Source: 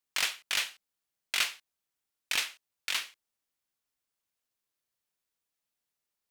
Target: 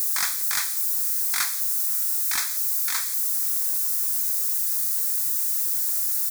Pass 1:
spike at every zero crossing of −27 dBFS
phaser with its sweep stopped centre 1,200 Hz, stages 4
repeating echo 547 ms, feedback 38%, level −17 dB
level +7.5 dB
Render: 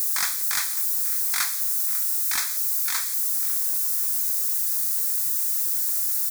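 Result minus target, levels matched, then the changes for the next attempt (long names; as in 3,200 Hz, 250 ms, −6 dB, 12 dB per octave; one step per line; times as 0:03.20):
echo-to-direct +10 dB
change: repeating echo 547 ms, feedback 38%, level −27 dB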